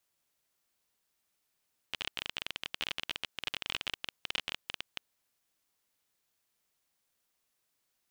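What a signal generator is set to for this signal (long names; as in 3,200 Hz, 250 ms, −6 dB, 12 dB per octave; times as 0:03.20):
Geiger counter clicks 26 per second −17 dBFS 3.07 s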